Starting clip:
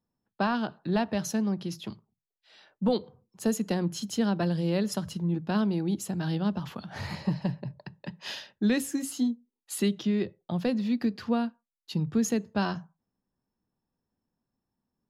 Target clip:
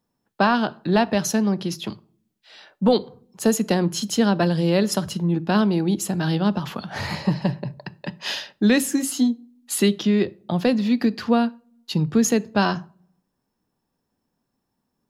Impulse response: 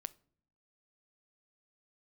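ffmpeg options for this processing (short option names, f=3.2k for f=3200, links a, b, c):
-filter_complex "[0:a]asplit=2[a][b];[1:a]atrim=start_sample=2205,lowshelf=f=130:g=-12[c];[b][c]afir=irnorm=-1:irlink=0,volume=10dB[d];[a][d]amix=inputs=2:normalize=0"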